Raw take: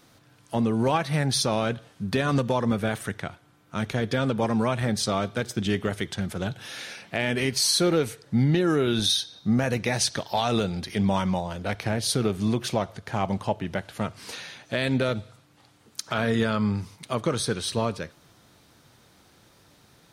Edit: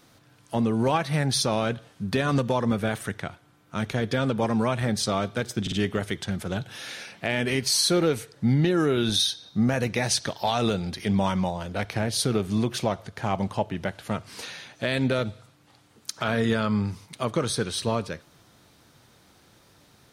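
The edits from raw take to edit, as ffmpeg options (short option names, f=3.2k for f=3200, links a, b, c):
-filter_complex "[0:a]asplit=3[a][b][c];[a]atrim=end=5.672[d];[b]atrim=start=5.618:end=5.672[e];[c]atrim=start=5.618[f];[d][e]acrossfade=d=0.004:c1=hsin:c2=hsin[g];[g][f]acrossfade=d=0.004:c1=hsin:c2=hsin"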